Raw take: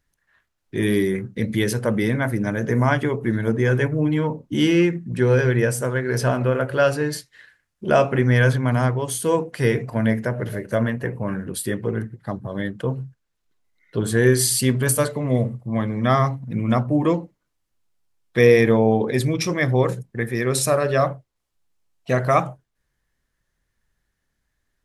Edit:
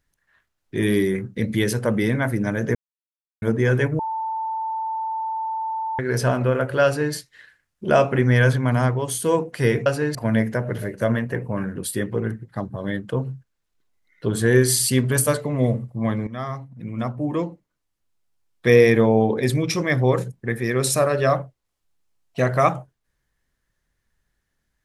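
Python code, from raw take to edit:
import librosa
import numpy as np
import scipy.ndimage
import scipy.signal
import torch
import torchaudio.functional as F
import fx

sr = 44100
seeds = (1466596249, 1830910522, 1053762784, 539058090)

y = fx.edit(x, sr, fx.silence(start_s=2.75, length_s=0.67),
    fx.bleep(start_s=3.99, length_s=2.0, hz=888.0, db=-23.5),
    fx.duplicate(start_s=6.85, length_s=0.29, to_s=9.86),
    fx.fade_in_from(start_s=15.98, length_s=2.41, floor_db=-14.0), tone=tone)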